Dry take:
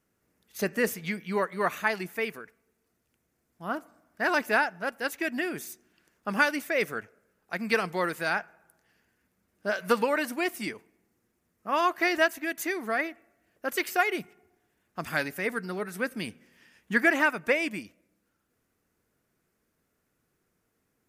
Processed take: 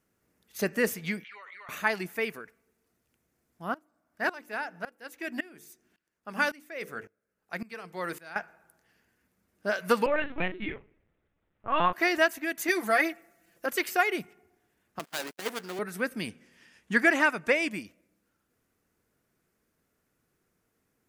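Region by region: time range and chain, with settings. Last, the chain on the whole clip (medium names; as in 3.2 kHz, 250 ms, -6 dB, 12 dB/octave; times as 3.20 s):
1.24–1.69 s: touch-sensitive flanger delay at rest 10.2 ms, full sweep at -27 dBFS + ladder band-pass 2 kHz, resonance 55% + level flattener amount 100%
3.74–8.36 s: hum notches 50/100/150/200/250/300/350/400/450/500 Hz + sawtooth tremolo in dB swelling 1.8 Hz, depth 21 dB
10.06–11.93 s: hum notches 60/120/180/240/300/360/420 Hz + doubling 45 ms -12 dB + LPC vocoder at 8 kHz pitch kept
12.68–13.66 s: treble shelf 3.4 kHz +8.5 dB + comb 5.9 ms, depth 91%
14.99–15.79 s: dead-time distortion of 0.25 ms + gate -42 dBFS, range -21 dB + high-pass 300 Hz
16.29–17.72 s: low-pass 8.8 kHz + treble shelf 6.7 kHz +6.5 dB
whole clip: none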